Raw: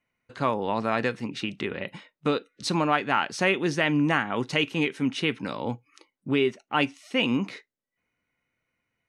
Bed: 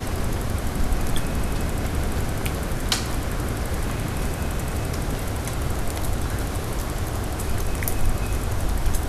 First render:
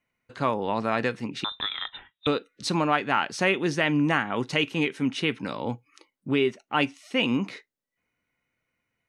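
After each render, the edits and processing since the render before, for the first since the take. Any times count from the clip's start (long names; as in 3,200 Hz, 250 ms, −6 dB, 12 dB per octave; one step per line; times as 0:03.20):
0:01.44–0:02.27: voice inversion scrambler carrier 3,800 Hz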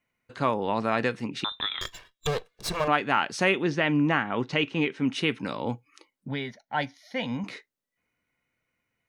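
0:01.81–0:02.88: lower of the sound and its delayed copy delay 1.8 ms
0:03.62–0:05.08: high-frequency loss of the air 120 metres
0:06.28–0:07.44: phaser with its sweep stopped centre 1,800 Hz, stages 8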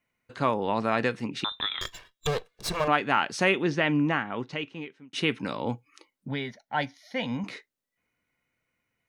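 0:03.84–0:05.13: fade out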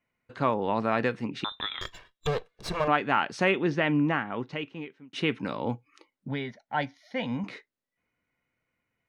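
low-pass filter 2,800 Hz 6 dB per octave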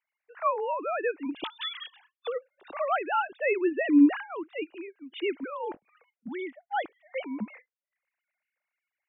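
three sine waves on the formant tracks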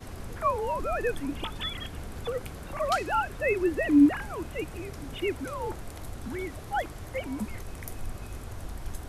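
mix in bed −14.5 dB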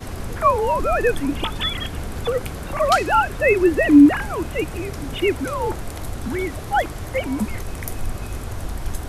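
level +10 dB
brickwall limiter −3 dBFS, peak gain reduction 2.5 dB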